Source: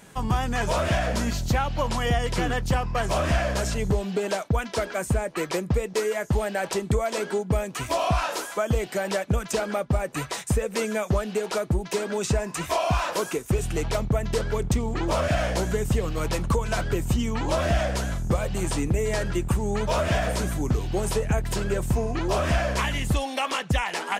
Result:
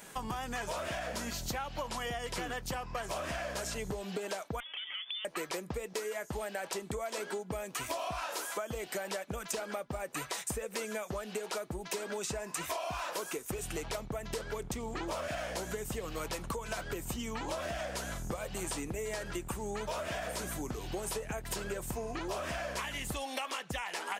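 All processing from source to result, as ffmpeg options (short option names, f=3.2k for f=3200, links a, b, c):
-filter_complex "[0:a]asettb=1/sr,asplit=3[a][b][c];[a]atrim=end=4.604[d];[b]atrim=start=4.6:end=5.25,asetpts=PTS-STARTPTS,afade=t=in:d=0.004:c=qsin,afade=t=out:st=0.646:d=0.004:c=qsin,aemphasis=mode=reproduction:type=75kf,lowpass=f=3.1k:t=q:w=0.5098,lowpass=f=3.1k:t=q:w=0.6013,lowpass=f=3.1k:t=q:w=0.9,lowpass=f=3.1k:t=q:w=2.563,afreqshift=-3600,acompressor=threshold=-37dB:ratio=6:attack=3.2:release=140:knee=1:detection=peak[e];[c]atrim=start=5.246[f];[d][e]acrossfade=d=0.004:c1=hsin:c2=qsin[g];[g][f]acrossfade=d=0.004:c1=qsin:c2=hsin,equalizer=f=75:w=0.35:g=-11.5,acompressor=threshold=-35dB:ratio=6,highshelf=f=12k:g=8.5"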